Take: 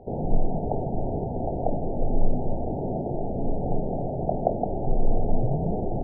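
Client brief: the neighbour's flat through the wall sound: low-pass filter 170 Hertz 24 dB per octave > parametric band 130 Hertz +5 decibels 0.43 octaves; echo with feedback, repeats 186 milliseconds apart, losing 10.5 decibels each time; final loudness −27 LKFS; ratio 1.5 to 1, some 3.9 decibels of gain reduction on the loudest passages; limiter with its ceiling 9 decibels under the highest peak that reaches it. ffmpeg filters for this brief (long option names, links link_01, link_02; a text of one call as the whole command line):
ffmpeg -i in.wav -af "acompressor=threshold=-24dB:ratio=1.5,alimiter=limit=-18.5dB:level=0:latency=1,lowpass=frequency=170:width=0.5412,lowpass=frequency=170:width=1.3066,equalizer=frequency=130:width_type=o:width=0.43:gain=5,aecho=1:1:186|372|558:0.299|0.0896|0.0269,volume=6.5dB" out.wav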